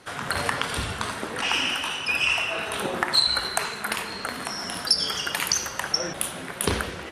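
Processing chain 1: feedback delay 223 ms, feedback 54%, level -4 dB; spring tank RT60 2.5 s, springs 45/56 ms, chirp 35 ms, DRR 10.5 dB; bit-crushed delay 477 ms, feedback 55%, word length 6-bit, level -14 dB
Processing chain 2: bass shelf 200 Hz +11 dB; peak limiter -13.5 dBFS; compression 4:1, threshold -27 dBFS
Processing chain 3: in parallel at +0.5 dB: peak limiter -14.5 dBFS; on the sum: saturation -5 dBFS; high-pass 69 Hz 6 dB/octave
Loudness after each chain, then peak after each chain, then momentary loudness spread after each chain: -22.5 LUFS, -30.0 LUFS, -20.0 LUFS; -4.5 dBFS, -14.0 dBFS, -6.0 dBFS; 7 LU, 4 LU, 8 LU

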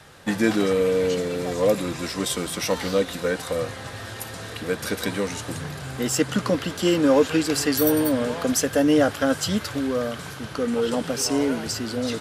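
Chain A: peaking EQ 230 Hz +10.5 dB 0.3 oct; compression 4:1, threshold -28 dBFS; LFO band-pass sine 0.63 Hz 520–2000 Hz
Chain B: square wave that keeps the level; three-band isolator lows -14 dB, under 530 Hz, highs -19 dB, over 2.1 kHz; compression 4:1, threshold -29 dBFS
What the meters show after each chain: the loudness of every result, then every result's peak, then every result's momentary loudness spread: -41.0 LUFS, -33.0 LUFS; -23.0 dBFS, -17.0 dBFS; 10 LU, 5 LU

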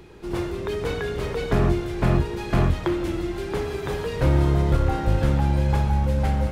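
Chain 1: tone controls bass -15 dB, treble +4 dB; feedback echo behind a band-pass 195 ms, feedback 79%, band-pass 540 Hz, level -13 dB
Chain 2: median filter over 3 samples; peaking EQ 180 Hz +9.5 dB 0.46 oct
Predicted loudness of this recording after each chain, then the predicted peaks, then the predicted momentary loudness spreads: -29.0 LUFS, -22.0 LUFS; -10.0 dBFS, -6.0 dBFS; 4 LU, 8 LU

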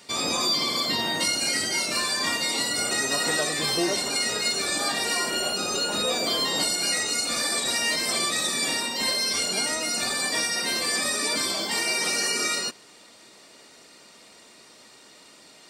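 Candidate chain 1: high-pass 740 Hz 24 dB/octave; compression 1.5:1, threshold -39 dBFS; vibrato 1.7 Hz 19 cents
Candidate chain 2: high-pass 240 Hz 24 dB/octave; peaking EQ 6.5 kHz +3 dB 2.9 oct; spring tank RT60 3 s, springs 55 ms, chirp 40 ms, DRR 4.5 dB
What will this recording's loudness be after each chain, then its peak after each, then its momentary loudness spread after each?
-29.5 LUFS, -21.0 LUFS; -18.5 dBFS, -9.0 dBFS; 20 LU, 2 LU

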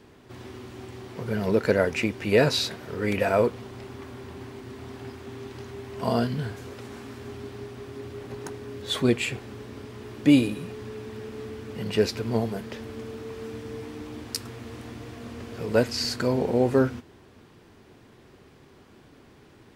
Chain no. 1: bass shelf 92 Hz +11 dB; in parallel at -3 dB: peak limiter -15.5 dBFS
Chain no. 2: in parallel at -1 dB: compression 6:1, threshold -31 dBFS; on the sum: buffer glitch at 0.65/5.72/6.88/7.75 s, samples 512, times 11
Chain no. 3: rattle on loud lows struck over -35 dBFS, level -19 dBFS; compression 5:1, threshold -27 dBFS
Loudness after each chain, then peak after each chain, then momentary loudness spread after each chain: -24.0 LUFS, -26.0 LUFS, -34.0 LUFS; -4.0 dBFS, -5.0 dBFS, -12.0 dBFS; 16 LU, 15 LU, 23 LU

